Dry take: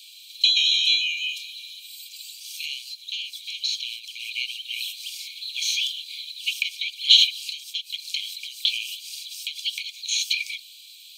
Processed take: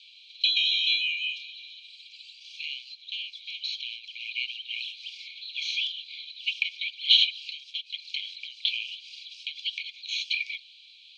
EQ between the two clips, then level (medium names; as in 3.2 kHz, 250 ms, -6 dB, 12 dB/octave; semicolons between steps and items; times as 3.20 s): low-pass 8.1 kHz 24 dB/octave; distance through air 300 m; +2.5 dB